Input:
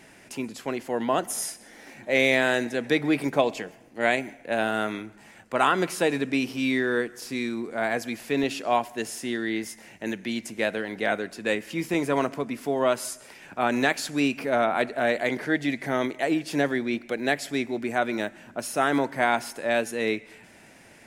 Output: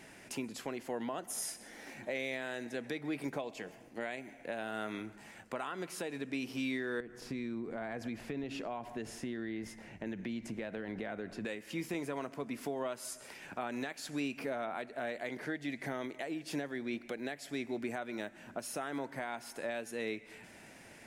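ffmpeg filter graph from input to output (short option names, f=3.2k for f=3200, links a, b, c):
-filter_complex "[0:a]asettb=1/sr,asplit=3[a][b][c];[a]atrim=end=7.004[d];[b]atrim=start=7:end=11.45,asetpts=PTS-STARTPTS,afade=t=in:d=0.004:c=qsin,afade=t=out:st=4.446:d=0.004:c=qsin,lowpass=f=2.2k:p=1,acompressor=threshold=-34dB:ratio=4:attack=3.2:release=140:knee=1:detection=peak,lowshelf=f=160:g=12[e];[c]atrim=start=11.446[f];[d][e]acrossfade=d=0.004:c1=hsin:c2=qsin[g];[g][f]acrossfade=d=0.004:c1=qsin:c2=hsin,acompressor=threshold=-33dB:ratio=2.5,alimiter=limit=-23.5dB:level=0:latency=1:release=400,volume=-3dB"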